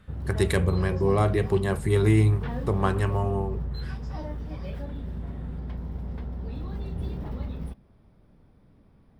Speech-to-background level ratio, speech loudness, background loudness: 9.5 dB, -25.0 LUFS, -34.5 LUFS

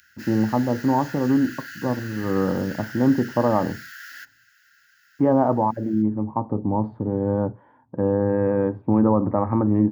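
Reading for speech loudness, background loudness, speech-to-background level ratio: -22.5 LUFS, -38.0 LUFS, 15.5 dB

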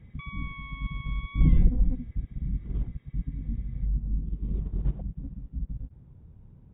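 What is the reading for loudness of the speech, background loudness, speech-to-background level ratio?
-32.0 LUFS, -43.5 LUFS, 11.5 dB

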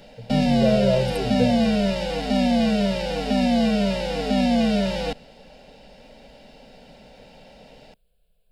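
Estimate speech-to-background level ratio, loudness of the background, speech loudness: -3.5 dB, -22.0 LUFS, -25.5 LUFS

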